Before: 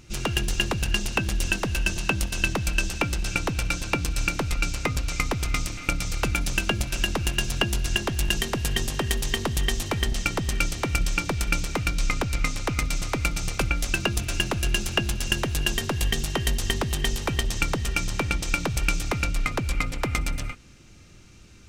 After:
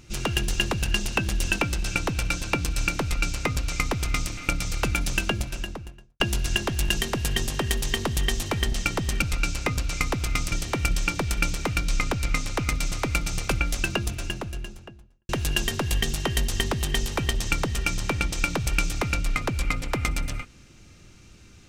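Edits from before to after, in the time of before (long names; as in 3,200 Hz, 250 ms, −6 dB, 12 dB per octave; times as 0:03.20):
0:01.59–0:02.99: remove
0:04.41–0:05.71: duplicate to 0:10.62
0:06.54–0:07.60: fade out and dull
0:13.74–0:15.39: fade out and dull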